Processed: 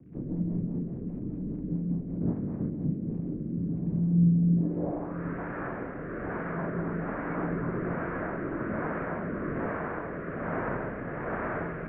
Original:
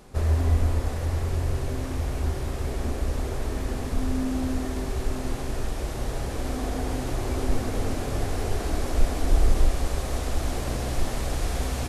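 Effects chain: 2.2–2.69 spectral limiter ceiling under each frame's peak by 28 dB; low-pass sweep 300 Hz -> 1600 Hz, 4.54–5.22; crackle 150/s -50 dBFS; rotary speaker horn 5 Hz, later 1.2 Hz, at 2.4; mistuned SSB -87 Hz 170–2400 Hz; gain +1.5 dB

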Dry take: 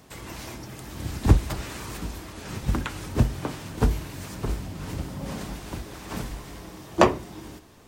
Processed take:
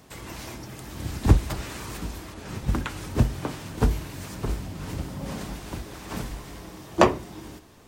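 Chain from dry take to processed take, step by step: 2.34–2.97 mismatched tape noise reduction decoder only

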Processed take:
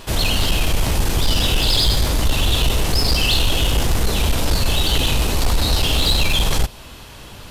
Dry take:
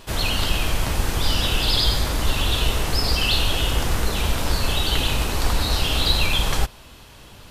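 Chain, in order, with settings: soft clip -16 dBFS, distortion -14 dB; dynamic EQ 1400 Hz, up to -5 dB, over -43 dBFS, Q 0.97; gain +6.5 dB

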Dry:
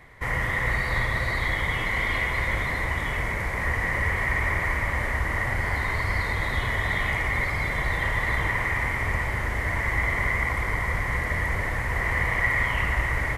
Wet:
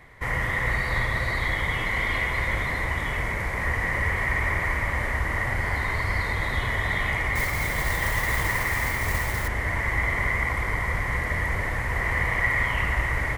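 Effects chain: 7.35–9.48 modulation noise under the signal 12 dB

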